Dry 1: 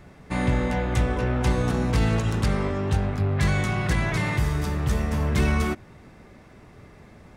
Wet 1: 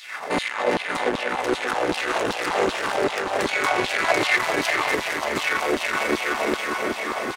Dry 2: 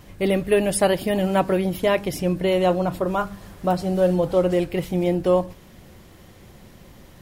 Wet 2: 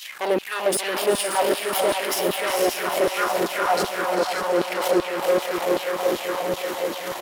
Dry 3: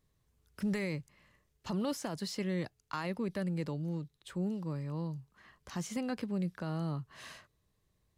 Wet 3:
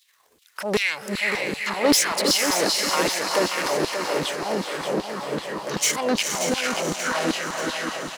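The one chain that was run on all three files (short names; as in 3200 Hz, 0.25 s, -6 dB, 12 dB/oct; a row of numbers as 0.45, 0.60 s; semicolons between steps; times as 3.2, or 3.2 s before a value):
transient shaper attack -3 dB, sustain +10 dB; low shelf 62 Hz +9.5 dB; reverse; compressor, threshold -23 dBFS; reverse; diffused feedback echo 0.464 s, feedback 48%, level -3 dB; limiter -23 dBFS; soft clip -34 dBFS; LFO high-pass saw down 2.6 Hz 280–3900 Hz; bell 160 Hz -2.5 dB 1.7 oct; feedback echo 0.582 s, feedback 55%, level -8 dB; match loudness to -23 LUFS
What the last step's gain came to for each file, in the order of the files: +18.5, +15.5, +18.0 dB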